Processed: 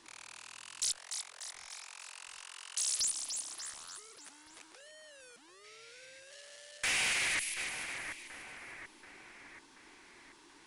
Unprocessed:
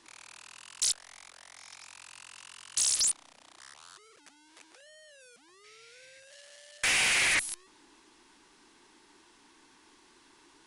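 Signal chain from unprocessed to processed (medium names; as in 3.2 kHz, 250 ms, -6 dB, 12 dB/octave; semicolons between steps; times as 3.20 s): 0.97–3.00 s: steep high-pass 360 Hz 96 dB/octave; two-band feedback delay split 2 kHz, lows 732 ms, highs 294 ms, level -12.5 dB; peak limiter -26.5 dBFS, peak gain reduction 8 dB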